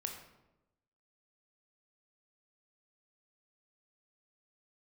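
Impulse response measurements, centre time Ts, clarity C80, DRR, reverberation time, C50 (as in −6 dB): 28 ms, 8.5 dB, 2.5 dB, 0.95 s, 6.0 dB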